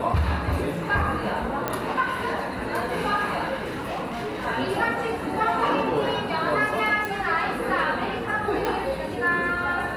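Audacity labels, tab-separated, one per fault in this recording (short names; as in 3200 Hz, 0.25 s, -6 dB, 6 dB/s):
1.680000	1.680000	pop -11 dBFS
3.640000	4.470000	clipped -26.5 dBFS
7.050000	7.050000	pop
8.650000	8.650000	pop -13 dBFS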